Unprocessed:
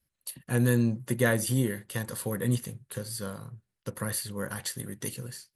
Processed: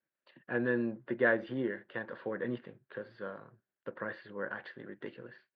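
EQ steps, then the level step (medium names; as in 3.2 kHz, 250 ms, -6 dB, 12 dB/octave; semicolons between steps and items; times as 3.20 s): distance through air 480 m; cabinet simulation 320–4000 Hz, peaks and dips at 340 Hz +5 dB, 610 Hz +4 dB, 1.6 kHz +8 dB; -2.0 dB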